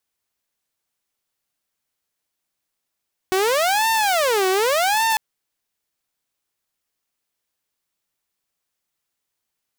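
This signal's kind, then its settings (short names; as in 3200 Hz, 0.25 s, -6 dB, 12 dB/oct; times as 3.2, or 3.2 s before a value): siren wail 373–902 Hz 0.86/s saw -14 dBFS 1.85 s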